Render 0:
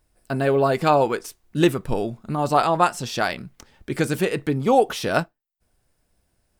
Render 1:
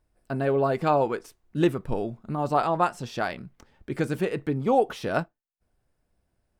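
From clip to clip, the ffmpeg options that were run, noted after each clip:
-af "highshelf=f=2900:g=-10,volume=0.631"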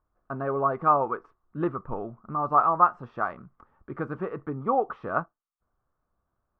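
-af "lowpass=f=1200:t=q:w=7.5,volume=0.473"

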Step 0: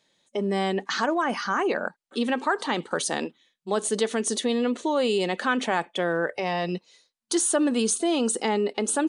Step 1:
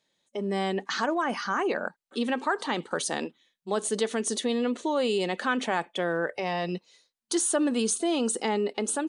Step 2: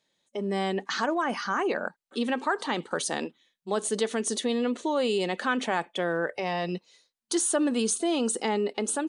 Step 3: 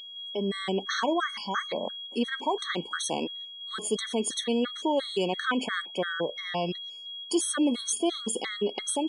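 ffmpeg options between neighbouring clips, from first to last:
-af "dynaudnorm=f=270:g=3:m=1.68,volume=0.447"
-af anull
-af "aeval=exprs='val(0)+0.02*sin(2*PI*3300*n/s)':c=same,afftfilt=real='re*gt(sin(2*PI*2.9*pts/sr)*(1-2*mod(floor(b*sr/1024/1100),2)),0)':imag='im*gt(sin(2*PI*2.9*pts/sr)*(1-2*mod(floor(b*sr/1024/1100),2)),0)':win_size=1024:overlap=0.75,volume=1.19"

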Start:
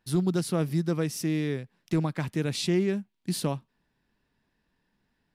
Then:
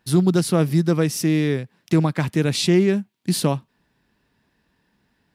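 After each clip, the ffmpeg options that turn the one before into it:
-af "highpass=45,volume=2.66"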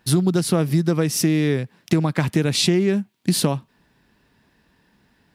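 -af "acompressor=threshold=0.0891:ratio=6,volume=2"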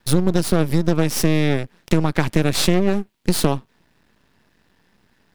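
-af "aeval=exprs='max(val(0),0)':c=same,volume=1.58"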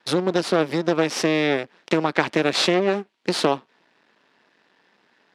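-af "highpass=370,lowpass=4700,volume=1.41"

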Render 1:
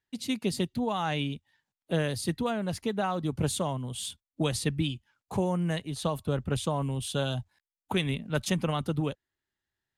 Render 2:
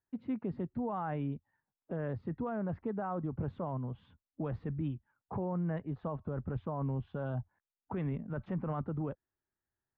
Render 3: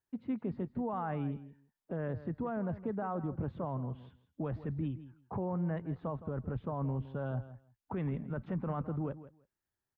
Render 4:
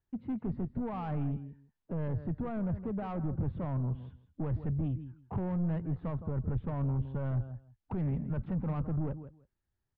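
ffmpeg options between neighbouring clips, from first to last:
-af "lowpass=f=1500:w=0.5412,lowpass=f=1500:w=1.3066,alimiter=level_in=1.19:limit=0.0631:level=0:latency=1:release=17,volume=0.841,volume=0.75"
-af "aecho=1:1:164|328:0.188|0.0283"
-af "asoftclip=type=tanh:threshold=0.02,aemphasis=mode=reproduction:type=bsi"

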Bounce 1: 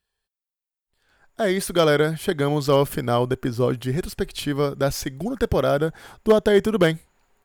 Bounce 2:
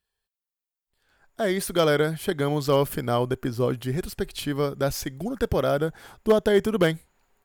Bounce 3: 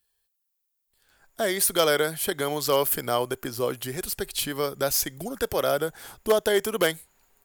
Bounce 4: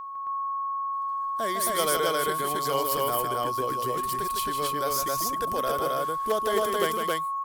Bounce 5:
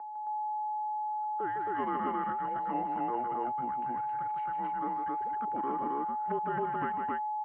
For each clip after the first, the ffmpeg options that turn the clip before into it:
-af "equalizer=f=15000:t=o:w=0.56:g=4.5,volume=0.708"
-filter_complex "[0:a]acrossover=split=360|3700[s0][s1][s2];[s0]acompressor=threshold=0.0141:ratio=6[s3];[s3][s1][s2]amix=inputs=3:normalize=0,crystalizer=i=2:c=0"
-af "aeval=exprs='val(0)+0.0398*sin(2*PI*1100*n/s)':c=same,aecho=1:1:154.5|268.2:0.501|0.891,volume=0.473"
-af "highpass=f=590:t=q:w=0.5412,highpass=f=590:t=q:w=1.307,lowpass=f=2100:t=q:w=0.5176,lowpass=f=2100:t=q:w=0.7071,lowpass=f=2100:t=q:w=1.932,afreqshift=-250,volume=0.631"

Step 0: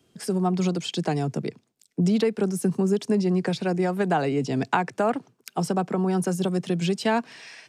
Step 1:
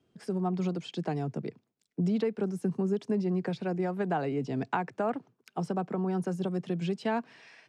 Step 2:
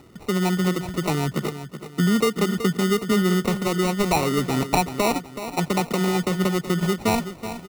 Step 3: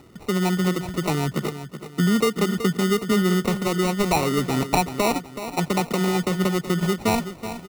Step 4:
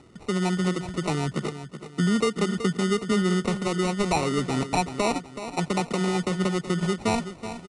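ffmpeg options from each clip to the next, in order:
-af "aemphasis=mode=reproduction:type=75kf,volume=0.473"
-filter_complex "[0:a]acompressor=mode=upward:threshold=0.00447:ratio=2.5,acrusher=samples=27:mix=1:aa=0.000001,asplit=2[s0][s1];[s1]aecho=0:1:376|752|1128|1504:0.282|0.104|0.0386|0.0143[s2];[s0][s2]amix=inputs=2:normalize=0,volume=2.66"
-af anull
-af "aeval=exprs='0.282*(abs(mod(val(0)/0.282+3,4)-2)-1)':c=same,aresample=22050,aresample=44100,volume=0.708"

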